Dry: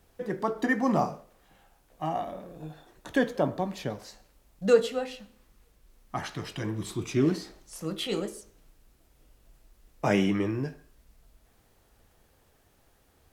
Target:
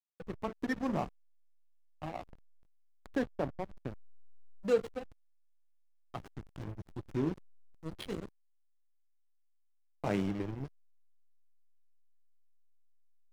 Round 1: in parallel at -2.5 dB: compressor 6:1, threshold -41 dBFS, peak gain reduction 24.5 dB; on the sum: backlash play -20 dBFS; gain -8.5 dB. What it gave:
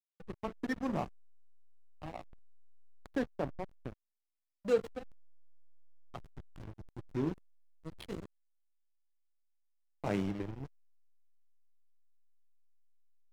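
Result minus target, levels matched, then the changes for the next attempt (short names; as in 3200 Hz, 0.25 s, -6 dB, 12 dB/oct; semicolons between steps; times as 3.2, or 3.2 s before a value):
compressor: peak gain reduction +8 dB
change: compressor 6:1, threshold -31.5 dBFS, peak gain reduction 16.5 dB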